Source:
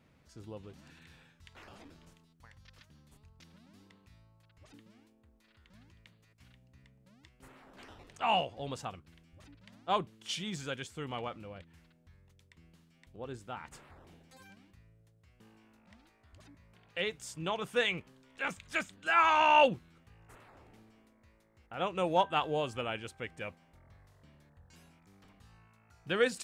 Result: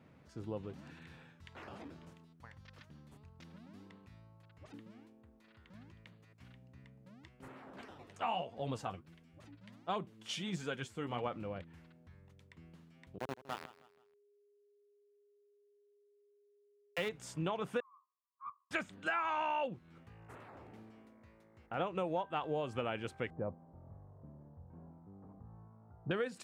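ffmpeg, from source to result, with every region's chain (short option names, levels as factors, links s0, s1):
-filter_complex "[0:a]asettb=1/sr,asplit=3[s0][s1][s2];[s0]atrim=end=7.814[s3];[s1]atrim=start=7.81:end=11.25,asetpts=PTS-STARTPTS,afade=t=in:d=0.004:c=qsin,afade=t=out:st=3.436:d=0.004:c=qsin,highshelf=f=4900:g=5.5,flanger=delay=4.3:depth=6.2:regen=40:speed=1.4:shape=sinusoidal[s4];[s2]atrim=start=11.246[s5];[s3][s4]acrossfade=d=0.004:c1=hsin:c2=qsin[s6];[s6][s5]acrossfade=d=0.004:c1=qsin:c2=hsin,asettb=1/sr,asplit=3[s7][s8][s9];[s7]atrim=end=13.184[s10];[s8]atrim=start=13.18:end=17.09,asetpts=PTS-STARTPTS,afade=t=in:d=0.004:c=qsin,afade=t=out:st=3.906:d=0.004:c=qsin,aeval=exprs='val(0)*gte(abs(val(0)),0.0158)':c=same,aeval=exprs='val(0)+0.000178*sin(2*PI*410*n/s)':c=same,aecho=1:1:161|322|483:0.133|0.052|0.0203,atrim=end_sample=172431[s11];[s9]atrim=start=17.086[s12];[s10][s11]acrossfade=d=0.004:c1=hsin:c2=qsin[s13];[s13][s12]acrossfade=d=0.004:c1=qsin:c2=hsin,asettb=1/sr,asplit=3[s14][s15][s16];[s14]atrim=end=17.804[s17];[s15]atrim=start=17.8:end=18.71,asetpts=PTS-STARTPTS,afade=t=in:d=0.004:c=qsin,afade=t=out:st=0.906:d=0.004:c=qsin,agate=range=0.0224:threshold=0.00398:ratio=3:release=100:detection=peak,asuperpass=centerf=1100:order=8:qfactor=5,aeval=exprs='(tanh(44.7*val(0)+0.3)-tanh(0.3))/44.7':c=same[s18];[s16]atrim=start=18.706[s19];[s17][s18]acrossfade=d=0.004:c1=hsin:c2=qsin[s20];[s20][s19]acrossfade=d=0.004:c1=qsin:c2=hsin,asettb=1/sr,asplit=3[s21][s22][s23];[s21]atrim=end=23.304[s24];[s22]atrim=start=23.3:end=26.11,asetpts=PTS-STARTPTS,afade=t=in:d=0.004:c=qsin,afade=t=out:st=2.806:d=0.004:c=qsin,lowpass=f=1000:w=0.5412,lowpass=f=1000:w=1.3066,lowshelf=f=170:g=4.5[s25];[s23]atrim=start=26.106[s26];[s24][s25]acrossfade=d=0.004:c1=hsin:c2=qsin[s27];[s27][s26]acrossfade=d=0.004:c1=qsin:c2=hsin,highpass=92,highshelf=f=2800:g=-12,acompressor=threshold=0.0126:ratio=10,volume=1.88"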